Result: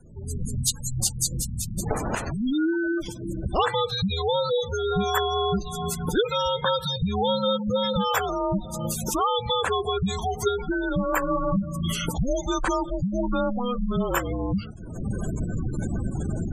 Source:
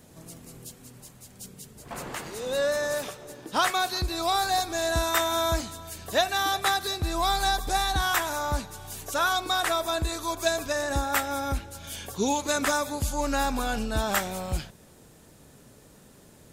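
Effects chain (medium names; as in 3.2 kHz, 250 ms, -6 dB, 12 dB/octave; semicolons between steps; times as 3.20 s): recorder AGC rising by 48 dB/s; 3.00–3.53 s: peaking EQ 1 kHz -> 3.3 kHz -10 dB 2.3 oct; 11.18–11.94 s: doubling 37 ms -2.5 dB; spectral gate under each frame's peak -15 dB strong; frequency shift -250 Hz; 0.55–1.31 s: graphic EQ 250/500/1000/4000/8000 Hz -5/-9/+10/+11/+6 dB; trim +2 dB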